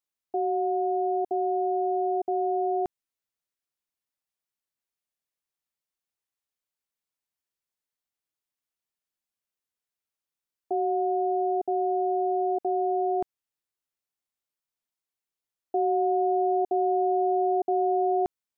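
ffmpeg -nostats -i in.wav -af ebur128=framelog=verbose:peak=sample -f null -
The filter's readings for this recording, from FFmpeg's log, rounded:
Integrated loudness:
  I:         -26.5 LUFS
  Threshold: -36.5 LUFS
Loudness range:
  LRA:         7.9 LU
  Threshold: -49.2 LUFS
  LRA low:   -34.0 LUFS
  LRA high:  -26.0 LUFS
Sample peak:
  Peak:      -17.9 dBFS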